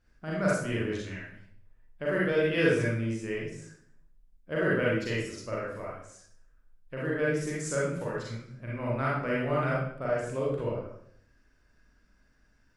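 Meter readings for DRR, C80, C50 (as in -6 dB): -6.0 dB, 5.0 dB, -1.0 dB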